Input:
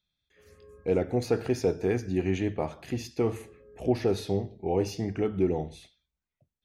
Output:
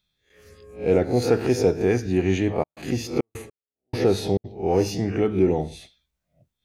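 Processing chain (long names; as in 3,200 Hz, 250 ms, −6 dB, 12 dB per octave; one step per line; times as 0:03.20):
peak hold with a rise ahead of every peak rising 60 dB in 0.35 s
0:02.62–0:04.44: gate pattern "...xxx.x" 103 BPM −60 dB
level +5.5 dB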